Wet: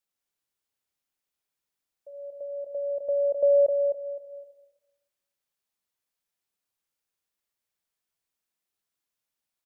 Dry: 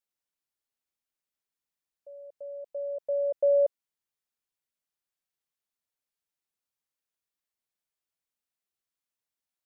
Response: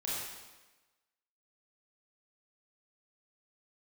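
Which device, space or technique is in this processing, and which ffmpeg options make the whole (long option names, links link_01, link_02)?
ducked reverb: -filter_complex "[0:a]asplit=3[link_01][link_02][link_03];[link_01]afade=type=out:start_time=2.12:duration=0.02[link_04];[link_02]lowshelf=frequency=460:gain=6,afade=type=in:start_time=2.12:duration=0.02,afade=type=out:start_time=3.65:duration=0.02[link_05];[link_03]afade=type=in:start_time=3.65:duration=0.02[link_06];[link_04][link_05][link_06]amix=inputs=3:normalize=0,aecho=1:1:258|516|774:0.473|0.104|0.0229,asplit=3[link_07][link_08][link_09];[1:a]atrim=start_sample=2205[link_10];[link_08][link_10]afir=irnorm=-1:irlink=0[link_11];[link_09]apad=whole_len=460125[link_12];[link_11][link_12]sidechaincompress=threshold=-41dB:ratio=3:attack=16:release=450,volume=-7dB[link_13];[link_07][link_13]amix=inputs=2:normalize=0"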